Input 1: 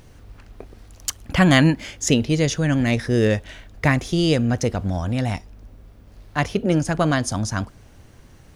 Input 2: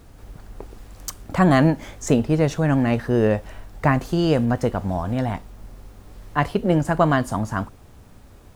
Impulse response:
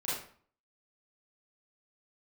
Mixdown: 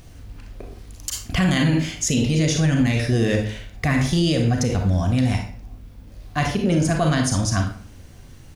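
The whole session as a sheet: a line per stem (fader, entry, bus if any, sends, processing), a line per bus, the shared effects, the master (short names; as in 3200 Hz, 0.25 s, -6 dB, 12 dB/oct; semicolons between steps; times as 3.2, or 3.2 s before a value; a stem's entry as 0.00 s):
+1.5 dB, 0.00 s, send -4.5 dB, bell 770 Hz -7.5 dB 2.9 oct
+2.0 dB, 1.5 ms, no send, vowel sequencer 6.4 Hz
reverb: on, RT60 0.50 s, pre-delay 31 ms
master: limiter -10.5 dBFS, peak gain reduction 10 dB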